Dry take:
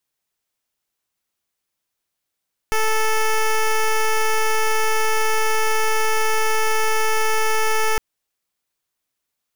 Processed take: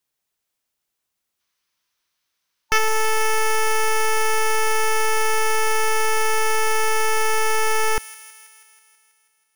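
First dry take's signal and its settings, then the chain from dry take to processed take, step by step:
pulse 438 Hz, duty 11% -17.5 dBFS 5.26 s
time-frequency box 1.40–2.78 s, 900–6500 Hz +7 dB; feedback echo behind a high-pass 162 ms, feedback 66%, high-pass 2.8 kHz, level -10.5 dB

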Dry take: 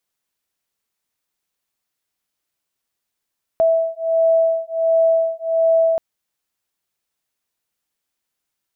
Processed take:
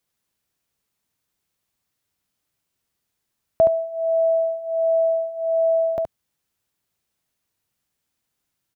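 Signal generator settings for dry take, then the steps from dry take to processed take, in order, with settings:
beating tones 655 Hz, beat 1.4 Hz, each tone -17 dBFS 2.38 s
peaking EQ 99 Hz +9.5 dB 2.7 oct; on a send: delay 71 ms -5.5 dB

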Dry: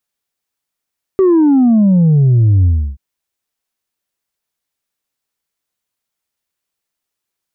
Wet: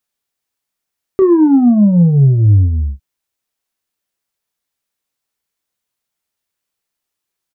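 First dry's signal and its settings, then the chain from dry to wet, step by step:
sub drop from 390 Hz, over 1.78 s, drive 2 dB, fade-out 0.32 s, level -7 dB
doubling 29 ms -10 dB

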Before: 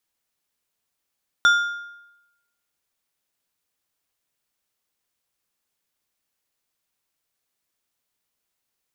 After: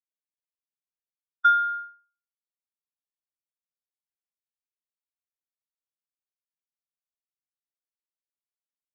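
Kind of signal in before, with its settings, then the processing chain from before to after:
metal hit plate, lowest mode 1.41 kHz, decay 0.93 s, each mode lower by 9 dB, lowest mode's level -10.5 dB
compression 6:1, threshold -28 dBFS; spectral contrast expander 2.5:1

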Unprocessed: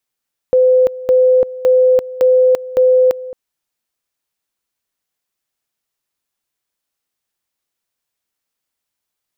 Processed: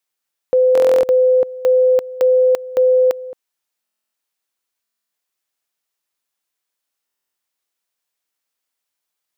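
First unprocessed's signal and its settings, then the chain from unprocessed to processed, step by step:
two-level tone 510 Hz -7 dBFS, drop 17.5 dB, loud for 0.34 s, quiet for 0.22 s, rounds 5
bass shelf 240 Hz -11.5 dB; buffer glitch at 0.73/3.83/4.82/7.05 s, samples 1024, times 12

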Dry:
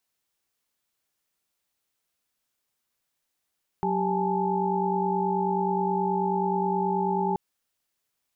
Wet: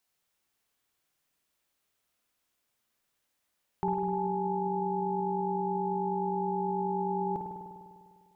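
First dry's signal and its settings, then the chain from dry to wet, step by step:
chord F#3/G4/G#5/A5 sine, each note -28.5 dBFS 3.53 s
peak limiter -21 dBFS; spring tank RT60 2 s, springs 50 ms, chirp 80 ms, DRR 1 dB

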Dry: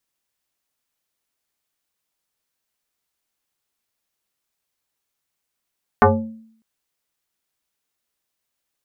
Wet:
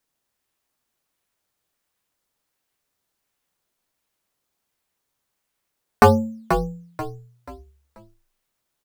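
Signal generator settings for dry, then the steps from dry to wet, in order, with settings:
FM tone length 0.60 s, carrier 223 Hz, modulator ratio 1.43, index 4.3, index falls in 0.58 s exponential, decay 0.64 s, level -6 dB
in parallel at -8.5 dB: decimation with a swept rate 11×, swing 100% 1.4 Hz; on the sum: frequency-shifting echo 485 ms, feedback 34%, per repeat -51 Hz, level -8 dB

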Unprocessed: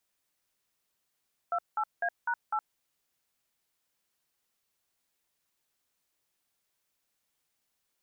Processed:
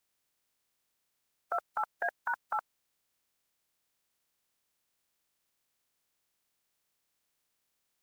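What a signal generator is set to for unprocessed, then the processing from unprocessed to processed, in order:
DTMF "28A#8", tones 66 ms, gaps 185 ms, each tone -29.5 dBFS
spectral peaks clipped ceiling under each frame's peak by 18 dB

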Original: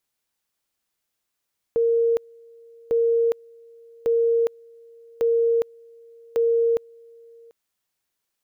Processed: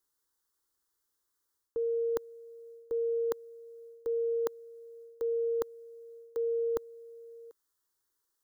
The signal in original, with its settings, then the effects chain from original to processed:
two-level tone 463 Hz -16.5 dBFS, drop 28.5 dB, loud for 0.41 s, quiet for 0.74 s, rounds 5
reverse; compression 6:1, threshold -29 dBFS; reverse; static phaser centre 670 Hz, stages 6

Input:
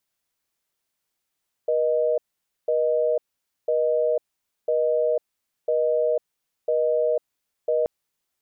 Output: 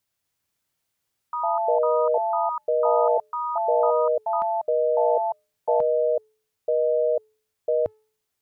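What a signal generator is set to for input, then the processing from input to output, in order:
call progress tone busy tone, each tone -21.5 dBFS 6.18 s
peaking EQ 100 Hz +10 dB 0.66 oct; de-hum 432.8 Hz, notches 30; ever faster or slower copies 245 ms, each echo +6 st, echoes 2

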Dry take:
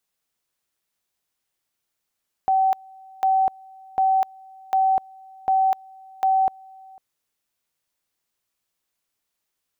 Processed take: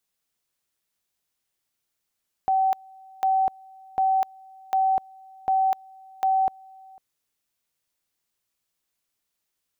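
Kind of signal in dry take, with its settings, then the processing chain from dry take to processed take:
two-level tone 765 Hz -15.5 dBFS, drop 26.5 dB, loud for 0.25 s, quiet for 0.50 s, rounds 6
peaking EQ 910 Hz -2.5 dB 2.9 oct

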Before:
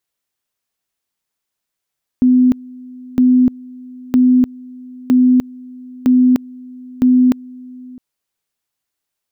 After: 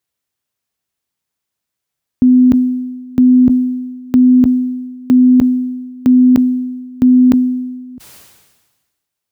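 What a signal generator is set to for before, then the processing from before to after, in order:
two-level tone 252 Hz -7 dBFS, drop 24 dB, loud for 0.30 s, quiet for 0.66 s, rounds 6
high-pass 76 Hz; bass shelf 140 Hz +11 dB; decay stretcher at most 43 dB/s

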